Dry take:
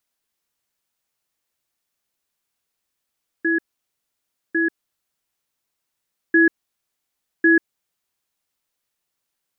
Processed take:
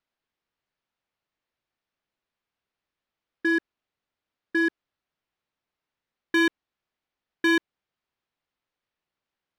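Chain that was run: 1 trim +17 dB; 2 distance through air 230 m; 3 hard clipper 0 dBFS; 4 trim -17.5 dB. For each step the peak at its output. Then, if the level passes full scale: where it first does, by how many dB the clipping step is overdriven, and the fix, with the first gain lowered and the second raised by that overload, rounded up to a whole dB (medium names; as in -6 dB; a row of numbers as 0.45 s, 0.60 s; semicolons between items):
+9.5 dBFS, +8.5 dBFS, 0.0 dBFS, -17.5 dBFS; step 1, 8.5 dB; step 1 +8 dB, step 4 -8.5 dB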